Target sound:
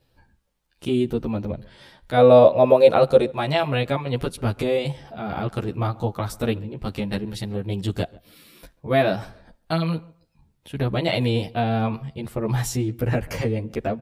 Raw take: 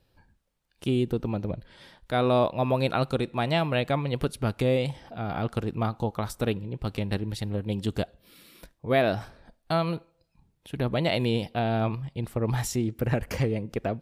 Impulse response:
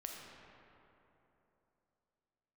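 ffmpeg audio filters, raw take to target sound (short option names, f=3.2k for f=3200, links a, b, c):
-filter_complex "[0:a]asettb=1/sr,asplit=3[a][b][c];[a]atrim=end=2.174[d];[b]atrim=start=2.17:end=3.28,asetpts=PTS-STARTPTS,afade=t=in:d=0.004:c=qsin,afade=t=out:st=1.106:d=0.004:c=qsin,equalizer=f=540:t=o:w=0.69:g=12.5[e];[c]atrim=start=3.276[f];[d][e]acrossfade=d=0.004:c1=hsin:c2=qsin[g];[g][f]acrossfade=d=0.004:c1=qsin:c2=hsin,asplit=2[h][i];[i]adelay=139,lowpass=f=1.8k:p=1,volume=-22.5dB,asplit=2[j][k];[k]adelay=139,lowpass=f=1.8k:p=1,volume=0.24[l];[h][j][l]amix=inputs=3:normalize=0,asplit=2[m][n];[n]adelay=11.6,afreqshift=-0.56[o];[m][o]amix=inputs=2:normalize=1,volume=6dB"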